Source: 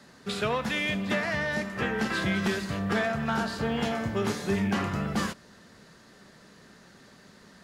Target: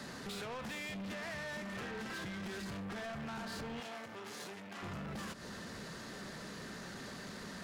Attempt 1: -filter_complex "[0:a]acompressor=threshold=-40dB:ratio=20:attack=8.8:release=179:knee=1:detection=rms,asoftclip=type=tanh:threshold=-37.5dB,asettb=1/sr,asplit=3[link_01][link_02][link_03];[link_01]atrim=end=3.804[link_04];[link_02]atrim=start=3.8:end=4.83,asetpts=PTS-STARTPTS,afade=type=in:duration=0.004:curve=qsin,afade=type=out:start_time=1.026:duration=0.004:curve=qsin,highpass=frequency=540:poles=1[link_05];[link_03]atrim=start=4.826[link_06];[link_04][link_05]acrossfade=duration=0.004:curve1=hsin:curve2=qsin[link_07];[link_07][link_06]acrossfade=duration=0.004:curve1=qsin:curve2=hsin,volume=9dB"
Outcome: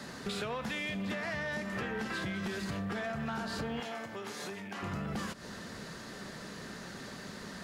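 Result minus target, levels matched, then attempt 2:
soft clipping: distortion −12 dB
-filter_complex "[0:a]acompressor=threshold=-40dB:ratio=20:attack=8.8:release=179:knee=1:detection=rms,asoftclip=type=tanh:threshold=-49.5dB,asettb=1/sr,asplit=3[link_01][link_02][link_03];[link_01]atrim=end=3.804[link_04];[link_02]atrim=start=3.8:end=4.83,asetpts=PTS-STARTPTS,afade=type=in:duration=0.004:curve=qsin,afade=type=out:start_time=1.026:duration=0.004:curve=qsin,highpass=frequency=540:poles=1[link_05];[link_03]atrim=start=4.826[link_06];[link_04][link_05]acrossfade=duration=0.004:curve1=hsin:curve2=qsin[link_07];[link_07][link_06]acrossfade=duration=0.004:curve1=qsin:curve2=hsin,volume=9dB"

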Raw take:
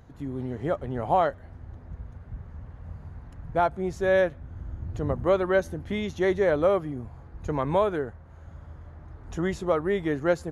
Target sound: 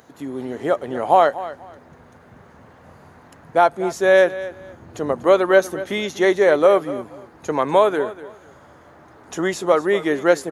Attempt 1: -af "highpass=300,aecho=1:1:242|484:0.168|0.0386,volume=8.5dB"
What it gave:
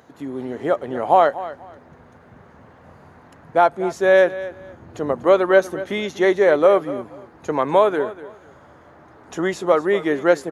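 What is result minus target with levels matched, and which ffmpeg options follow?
8,000 Hz band −5.5 dB
-af "highpass=300,highshelf=frequency=4800:gain=8,aecho=1:1:242|484:0.168|0.0386,volume=8.5dB"

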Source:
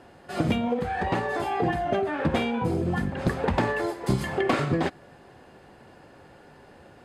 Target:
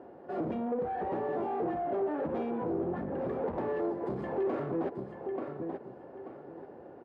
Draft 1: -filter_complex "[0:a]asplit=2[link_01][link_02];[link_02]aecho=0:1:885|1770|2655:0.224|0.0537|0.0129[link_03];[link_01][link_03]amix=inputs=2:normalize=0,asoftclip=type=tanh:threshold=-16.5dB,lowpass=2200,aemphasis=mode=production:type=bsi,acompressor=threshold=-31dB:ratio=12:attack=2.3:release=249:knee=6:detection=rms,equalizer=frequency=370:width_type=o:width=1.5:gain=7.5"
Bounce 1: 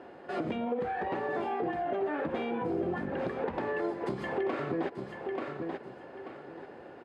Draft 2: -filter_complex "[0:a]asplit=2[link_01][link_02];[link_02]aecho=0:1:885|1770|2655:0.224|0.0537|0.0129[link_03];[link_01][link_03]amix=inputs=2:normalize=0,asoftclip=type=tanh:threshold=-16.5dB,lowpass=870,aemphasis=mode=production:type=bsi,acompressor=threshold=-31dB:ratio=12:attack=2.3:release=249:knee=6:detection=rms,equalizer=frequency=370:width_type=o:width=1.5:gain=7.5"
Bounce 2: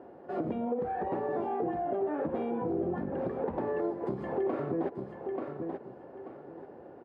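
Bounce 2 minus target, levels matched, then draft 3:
soft clipping: distortion −12 dB
-filter_complex "[0:a]asplit=2[link_01][link_02];[link_02]aecho=0:1:885|1770|2655:0.224|0.0537|0.0129[link_03];[link_01][link_03]amix=inputs=2:normalize=0,asoftclip=type=tanh:threshold=-28dB,lowpass=870,aemphasis=mode=production:type=bsi,acompressor=threshold=-31dB:ratio=12:attack=2.3:release=249:knee=6:detection=rms,equalizer=frequency=370:width_type=o:width=1.5:gain=7.5"

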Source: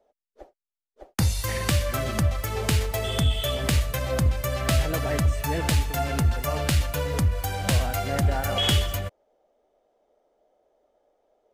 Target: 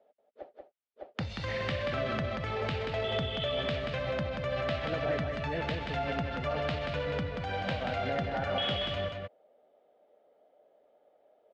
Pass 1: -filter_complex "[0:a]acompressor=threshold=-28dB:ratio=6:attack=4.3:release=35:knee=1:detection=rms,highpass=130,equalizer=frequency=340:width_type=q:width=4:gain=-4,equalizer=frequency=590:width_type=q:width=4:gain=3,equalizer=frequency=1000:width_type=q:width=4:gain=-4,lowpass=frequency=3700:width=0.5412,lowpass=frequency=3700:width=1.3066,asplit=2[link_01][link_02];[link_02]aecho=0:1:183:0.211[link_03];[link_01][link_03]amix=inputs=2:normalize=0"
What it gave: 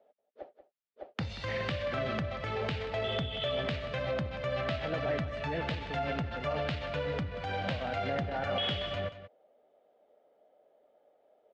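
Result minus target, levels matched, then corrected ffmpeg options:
echo-to-direct −9 dB
-filter_complex "[0:a]acompressor=threshold=-28dB:ratio=6:attack=4.3:release=35:knee=1:detection=rms,highpass=130,equalizer=frequency=340:width_type=q:width=4:gain=-4,equalizer=frequency=590:width_type=q:width=4:gain=3,equalizer=frequency=1000:width_type=q:width=4:gain=-4,lowpass=frequency=3700:width=0.5412,lowpass=frequency=3700:width=1.3066,asplit=2[link_01][link_02];[link_02]aecho=0:1:183:0.596[link_03];[link_01][link_03]amix=inputs=2:normalize=0"

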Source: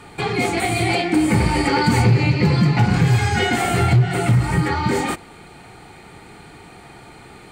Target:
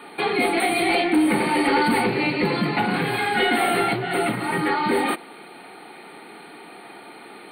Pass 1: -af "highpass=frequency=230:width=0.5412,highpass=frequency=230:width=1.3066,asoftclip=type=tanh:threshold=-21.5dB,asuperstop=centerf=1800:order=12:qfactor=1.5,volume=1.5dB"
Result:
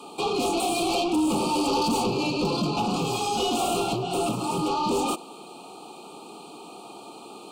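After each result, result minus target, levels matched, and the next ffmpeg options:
2,000 Hz band −10.0 dB; soft clipping: distortion +9 dB
-af "highpass=frequency=230:width=0.5412,highpass=frequency=230:width=1.3066,asoftclip=type=tanh:threshold=-21.5dB,asuperstop=centerf=6200:order=12:qfactor=1.5,volume=1.5dB"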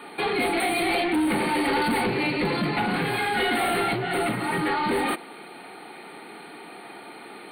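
soft clipping: distortion +9 dB
-af "highpass=frequency=230:width=0.5412,highpass=frequency=230:width=1.3066,asoftclip=type=tanh:threshold=-13dB,asuperstop=centerf=6200:order=12:qfactor=1.5,volume=1.5dB"

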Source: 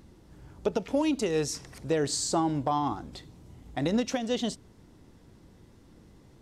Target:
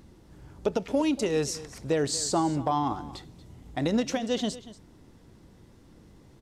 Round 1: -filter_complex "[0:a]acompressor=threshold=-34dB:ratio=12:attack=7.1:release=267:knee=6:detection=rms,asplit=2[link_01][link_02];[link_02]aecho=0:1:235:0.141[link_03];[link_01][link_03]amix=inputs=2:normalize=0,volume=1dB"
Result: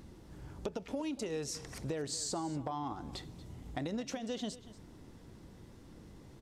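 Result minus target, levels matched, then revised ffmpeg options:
downward compressor: peak gain reduction +14 dB
-filter_complex "[0:a]asplit=2[link_01][link_02];[link_02]aecho=0:1:235:0.141[link_03];[link_01][link_03]amix=inputs=2:normalize=0,volume=1dB"

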